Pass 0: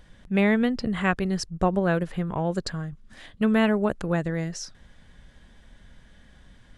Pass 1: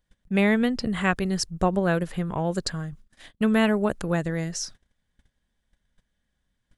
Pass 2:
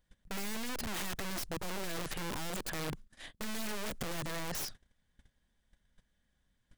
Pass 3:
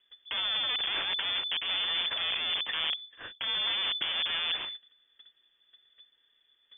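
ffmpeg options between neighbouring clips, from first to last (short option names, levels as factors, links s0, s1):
-af "agate=range=0.0631:threshold=0.00631:ratio=16:detection=peak,highshelf=f=5900:g=10"
-af "aeval=exprs='(tanh(31.6*val(0)+0.45)-tanh(0.45))/31.6':c=same,aeval=exprs='(mod(42.2*val(0)+1,2)-1)/42.2':c=same,volume=1.12"
-af "lowpass=f=3000:t=q:w=0.5098,lowpass=f=3000:t=q:w=0.6013,lowpass=f=3000:t=q:w=0.9,lowpass=f=3000:t=q:w=2.563,afreqshift=-3500,volume=2.11"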